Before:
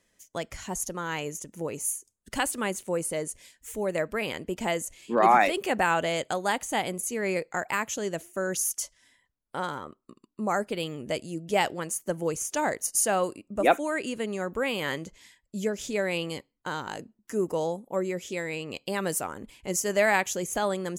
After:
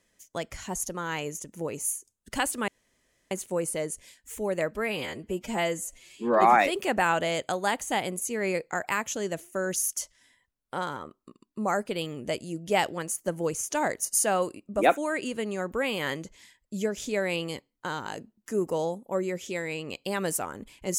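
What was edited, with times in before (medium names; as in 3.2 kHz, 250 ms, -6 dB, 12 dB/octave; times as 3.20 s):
2.68 s: insert room tone 0.63 s
4.12–5.23 s: stretch 1.5×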